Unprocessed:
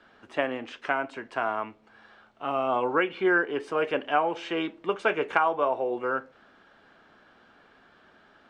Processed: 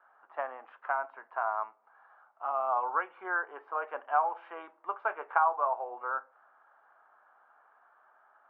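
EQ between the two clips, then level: Butterworth band-pass 1000 Hz, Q 1.5; air absorption 72 m; 0.0 dB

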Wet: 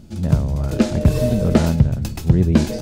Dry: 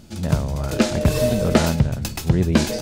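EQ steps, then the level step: low shelf 480 Hz +10 dB; -5.5 dB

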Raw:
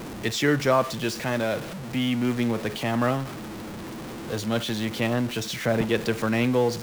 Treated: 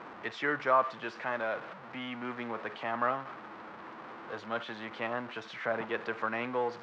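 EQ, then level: band-pass 1200 Hz, Q 1.4; air absorption 130 m; 0.0 dB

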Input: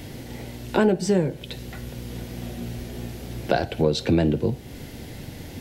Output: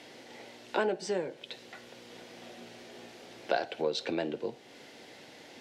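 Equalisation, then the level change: BPF 470–6100 Hz; -5.5 dB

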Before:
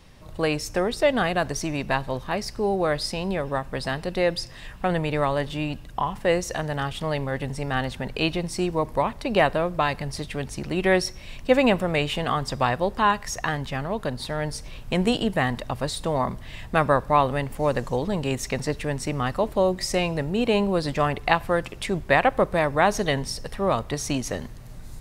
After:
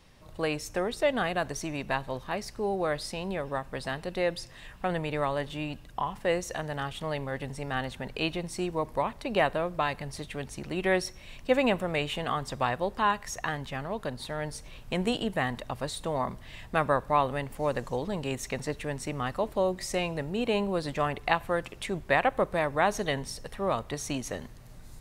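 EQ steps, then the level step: low shelf 250 Hz -3.5 dB; dynamic EQ 5000 Hz, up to -6 dB, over -53 dBFS, Q 5.3; -5.0 dB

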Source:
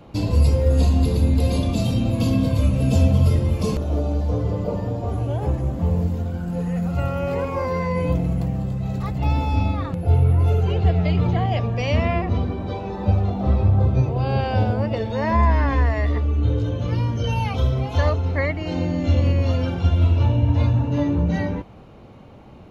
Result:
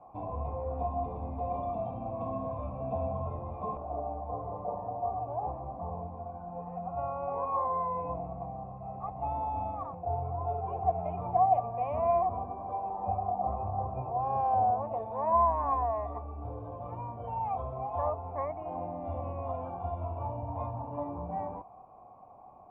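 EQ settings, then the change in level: vocal tract filter a; +6.5 dB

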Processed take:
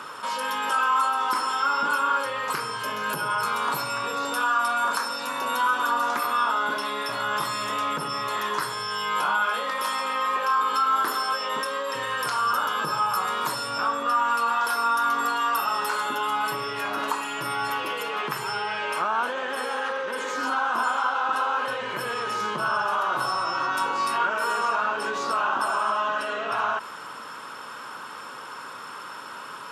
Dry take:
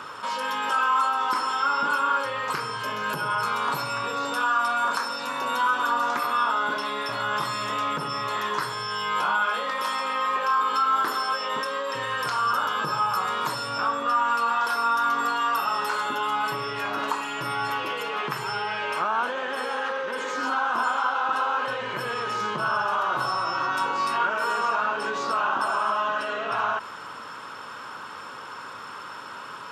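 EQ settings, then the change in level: HPF 130 Hz; bell 11000 Hz +9.5 dB 0.66 oct; 0.0 dB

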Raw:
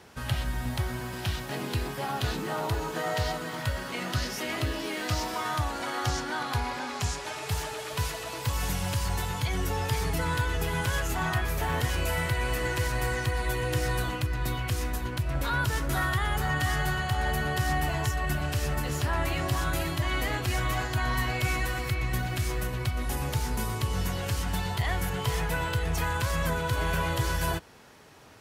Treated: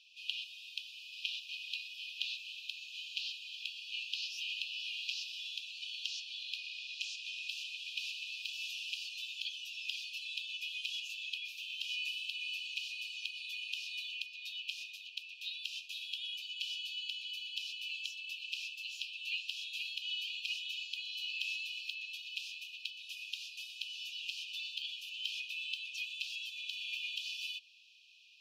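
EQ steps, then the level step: brick-wall FIR high-pass 2400 Hz; air absorption 270 m; +6.5 dB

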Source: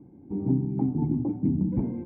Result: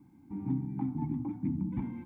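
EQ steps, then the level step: tilt shelf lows -9.5 dB; band shelf 510 Hz -15 dB 1.1 oct; +1.0 dB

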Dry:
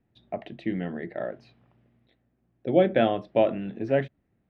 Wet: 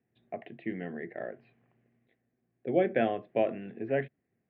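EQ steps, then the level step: speaker cabinet 180–2400 Hz, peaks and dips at 190 Hz -7 dB, 300 Hz -8 dB, 580 Hz -7 dB, 910 Hz -10 dB, 1300 Hz -9 dB; 0.0 dB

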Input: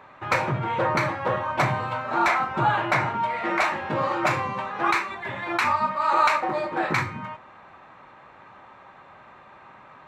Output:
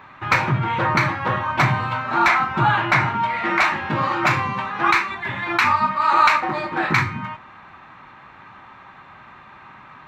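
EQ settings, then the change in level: bell 540 Hz -11 dB 1.1 oct; bell 9300 Hz -9.5 dB 0.85 oct; +7.5 dB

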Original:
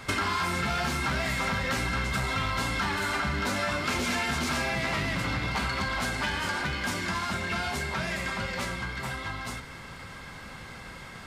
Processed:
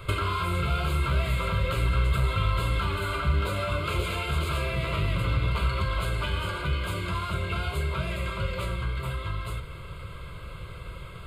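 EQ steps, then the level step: low shelf 170 Hz +3 dB; low shelf 350 Hz +9 dB; fixed phaser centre 1200 Hz, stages 8; 0.0 dB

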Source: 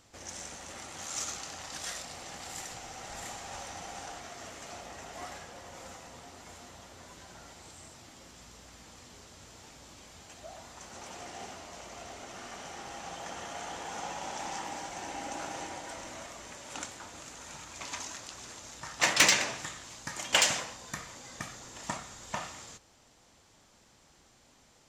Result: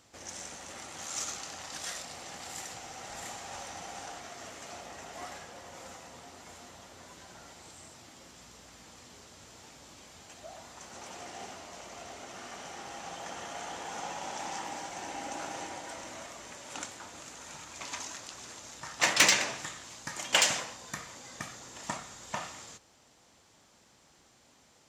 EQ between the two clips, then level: HPF 96 Hz 6 dB/oct; 0.0 dB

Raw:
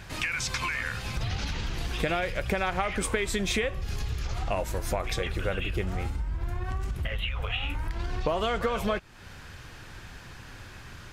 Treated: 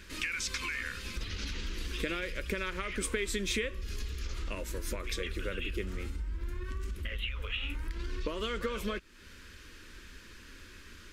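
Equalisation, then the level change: fixed phaser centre 310 Hz, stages 4; -3.0 dB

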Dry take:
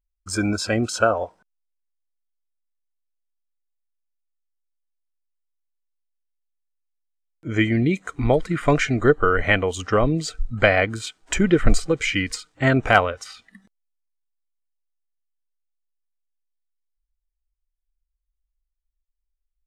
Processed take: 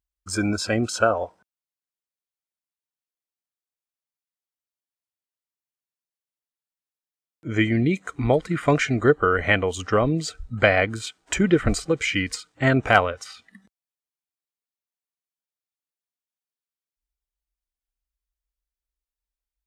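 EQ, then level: HPF 53 Hz; -1.0 dB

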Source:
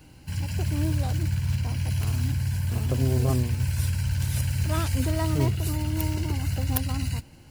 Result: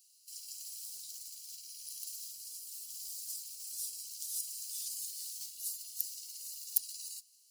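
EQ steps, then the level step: inverse Chebyshev high-pass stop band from 1500 Hz, stop band 60 dB; 0.0 dB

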